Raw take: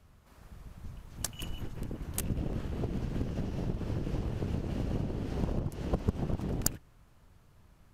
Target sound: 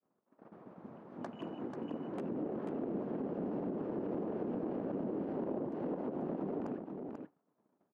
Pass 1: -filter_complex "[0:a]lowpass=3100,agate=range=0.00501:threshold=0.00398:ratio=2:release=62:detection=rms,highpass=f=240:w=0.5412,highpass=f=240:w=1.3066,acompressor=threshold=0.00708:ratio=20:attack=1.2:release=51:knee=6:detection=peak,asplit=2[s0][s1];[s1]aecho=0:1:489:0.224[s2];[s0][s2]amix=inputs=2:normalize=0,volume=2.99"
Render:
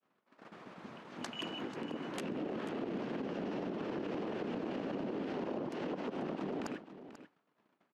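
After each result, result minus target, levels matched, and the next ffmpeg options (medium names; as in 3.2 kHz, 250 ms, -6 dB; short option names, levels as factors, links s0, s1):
4 kHz band +18.5 dB; echo-to-direct -8 dB
-filter_complex "[0:a]lowpass=790,agate=range=0.00501:threshold=0.00398:ratio=2:release=62:detection=rms,highpass=f=240:w=0.5412,highpass=f=240:w=1.3066,acompressor=threshold=0.00708:ratio=20:attack=1.2:release=51:knee=6:detection=peak,asplit=2[s0][s1];[s1]aecho=0:1:489:0.224[s2];[s0][s2]amix=inputs=2:normalize=0,volume=2.99"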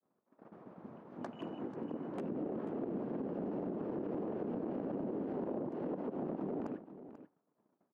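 echo-to-direct -8 dB
-filter_complex "[0:a]lowpass=790,agate=range=0.00501:threshold=0.00398:ratio=2:release=62:detection=rms,highpass=f=240:w=0.5412,highpass=f=240:w=1.3066,acompressor=threshold=0.00708:ratio=20:attack=1.2:release=51:knee=6:detection=peak,asplit=2[s0][s1];[s1]aecho=0:1:489:0.562[s2];[s0][s2]amix=inputs=2:normalize=0,volume=2.99"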